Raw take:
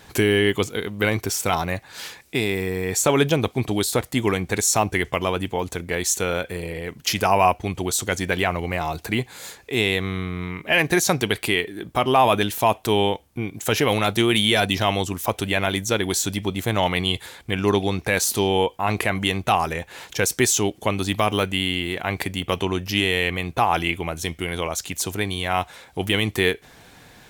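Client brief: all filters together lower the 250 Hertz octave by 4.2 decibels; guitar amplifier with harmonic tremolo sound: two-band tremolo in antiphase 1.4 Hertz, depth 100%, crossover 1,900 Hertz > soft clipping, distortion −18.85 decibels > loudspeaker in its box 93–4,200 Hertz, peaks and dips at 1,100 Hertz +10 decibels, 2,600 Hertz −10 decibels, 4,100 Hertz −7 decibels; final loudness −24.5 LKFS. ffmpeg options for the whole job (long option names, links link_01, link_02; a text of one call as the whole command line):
ffmpeg -i in.wav -filter_complex "[0:a]equalizer=frequency=250:width_type=o:gain=-6,acrossover=split=1900[link_01][link_02];[link_01]aeval=exprs='val(0)*(1-1/2+1/2*cos(2*PI*1.4*n/s))':channel_layout=same[link_03];[link_02]aeval=exprs='val(0)*(1-1/2-1/2*cos(2*PI*1.4*n/s))':channel_layout=same[link_04];[link_03][link_04]amix=inputs=2:normalize=0,asoftclip=threshold=-13.5dB,highpass=93,equalizer=frequency=1100:width_type=q:width=4:gain=10,equalizer=frequency=2600:width_type=q:width=4:gain=-10,equalizer=frequency=4100:width_type=q:width=4:gain=-7,lowpass=frequency=4200:width=0.5412,lowpass=frequency=4200:width=1.3066,volume=5dB" out.wav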